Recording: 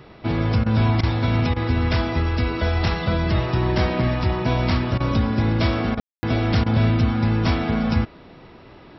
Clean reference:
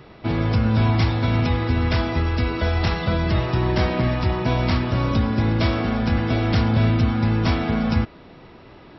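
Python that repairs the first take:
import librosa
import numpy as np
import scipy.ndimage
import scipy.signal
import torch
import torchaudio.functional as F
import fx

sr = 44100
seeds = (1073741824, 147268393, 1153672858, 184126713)

y = fx.fix_ambience(x, sr, seeds[0], print_start_s=8.46, print_end_s=8.96, start_s=6.0, end_s=6.23)
y = fx.fix_interpolate(y, sr, at_s=(0.64, 1.01, 1.54, 4.98, 5.95, 6.64), length_ms=21.0)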